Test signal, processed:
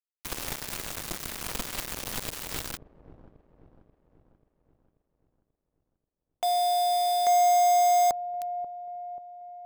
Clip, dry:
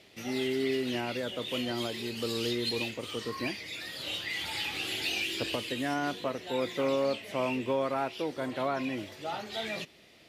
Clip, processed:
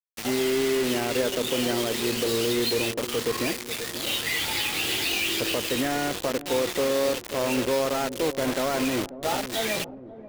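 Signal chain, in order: dynamic bell 460 Hz, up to +6 dB, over -43 dBFS, Q 1.5; peak limiter -24.5 dBFS; bit crusher 6-bit; on a send: feedback echo behind a low-pass 536 ms, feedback 54%, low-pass 540 Hz, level -11 dB; on the sum: trim +7 dB

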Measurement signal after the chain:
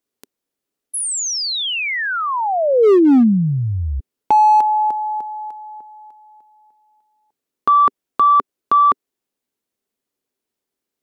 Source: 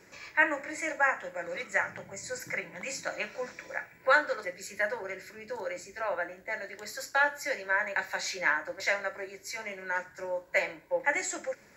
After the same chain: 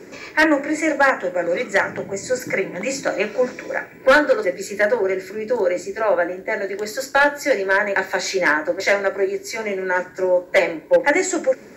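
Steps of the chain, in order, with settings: in parallel at -8 dB: sine folder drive 4 dB, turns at -10 dBFS; on the sum: small resonant body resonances 270/390 Hz, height 13 dB, ringing for 25 ms; overload inside the chain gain 11 dB; trim +3 dB

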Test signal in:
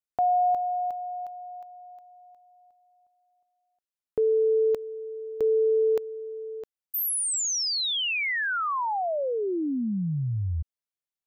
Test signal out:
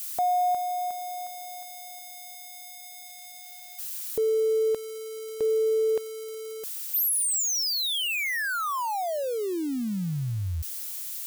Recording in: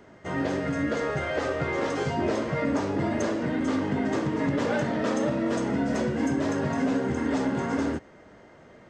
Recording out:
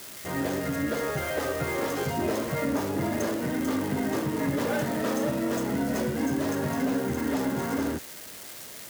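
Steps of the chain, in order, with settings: zero-crossing glitches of -27 dBFS; trim -1.5 dB

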